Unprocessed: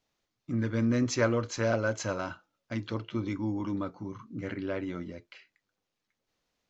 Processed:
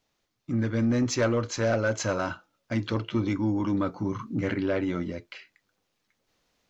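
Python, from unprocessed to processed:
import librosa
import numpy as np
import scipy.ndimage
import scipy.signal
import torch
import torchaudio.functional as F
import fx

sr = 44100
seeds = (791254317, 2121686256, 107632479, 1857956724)

p1 = fx.rider(x, sr, range_db=10, speed_s=0.5)
p2 = x + (p1 * librosa.db_to_amplitude(2.0))
p3 = 10.0 ** (-14.0 / 20.0) * np.tanh(p2 / 10.0 ** (-14.0 / 20.0))
y = p3 * librosa.db_to_amplitude(-1.5)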